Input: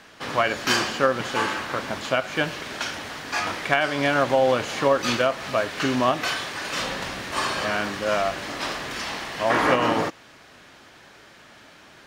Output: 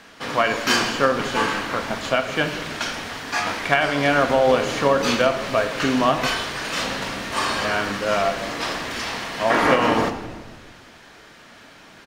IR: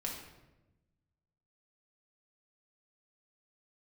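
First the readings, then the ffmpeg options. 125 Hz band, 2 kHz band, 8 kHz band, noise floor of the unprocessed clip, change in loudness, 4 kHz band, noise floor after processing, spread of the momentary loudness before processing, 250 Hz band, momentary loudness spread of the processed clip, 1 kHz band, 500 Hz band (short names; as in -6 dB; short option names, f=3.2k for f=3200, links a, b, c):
+3.0 dB, +2.5 dB, +2.5 dB, -50 dBFS, +2.5 dB, +2.5 dB, -47 dBFS, 9 LU, +3.5 dB, 9 LU, +2.5 dB, +2.5 dB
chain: -filter_complex "[0:a]asplit=6[a][b][c][d][e][f];[b]adelay=163,afreqshift=-110,volume=-16dB[g];[c]adelay=326,afreqshift=-220,volume=-21.2dB[h];[d]adelay=489,afreqshift=-330,volume=-26.4dB[i];[e]adelay=652,afreqshift=-440,volume=-31.6dB[j];[f]adelay=815,afreqshift=-550,volume=-36.8dB[k];[a][g][h][i][j][k]amix=inputs=6:normalize=0,asplit=2[l][m];[1:a]atrim=start_sample=2205[n];[m][n]afir=irnorm=-1:irlink=0,volume=-3dB[o];[l][o]amix=inputs=2:normalize=0,volume=-1.5dB"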